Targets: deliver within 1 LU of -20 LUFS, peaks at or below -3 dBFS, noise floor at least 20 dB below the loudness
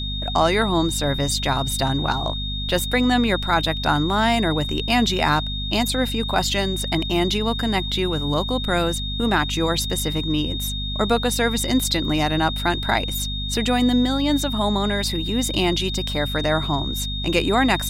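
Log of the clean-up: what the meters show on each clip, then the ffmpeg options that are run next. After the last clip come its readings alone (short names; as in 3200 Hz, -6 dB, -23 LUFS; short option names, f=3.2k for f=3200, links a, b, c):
hum 50 Hz; harmonics up to 250 Hz; hum level -26 dBFS; steady tone 3700 Hz; tone level -28 dBFS; loudness -21.0 LUFS; peak -6.0 dBFS; loudness target -20.0 LUFS
-> -af "bandreject=f=50:t=h:w=6,bandreject=f=100:t=h:w=6,bandreject=f=150:t=h:w=6,bandreject=f=200:t=h:w=6,bandreject=f=250:t=h:w=6"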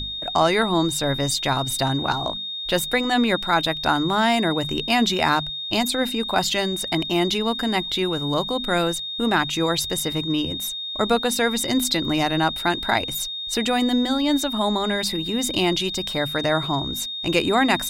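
hum none; steady tone 3700 Hz; tone level -28 dBFS
-> -af "bandreject=f=3.7k:w=30"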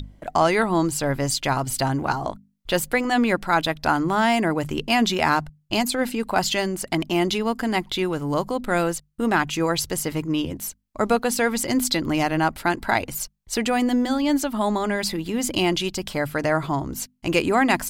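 steady tone none; loudness -23.0 LUFS; peak -6.5 dBFS; loudness target -20.0 LUFS
-> -af "volume=3dB"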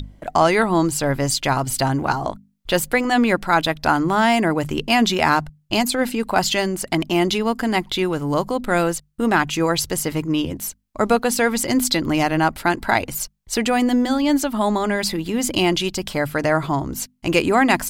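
loudness -20.0 LUFS; peak -3.5 dBFS; noise floor -59 dBFS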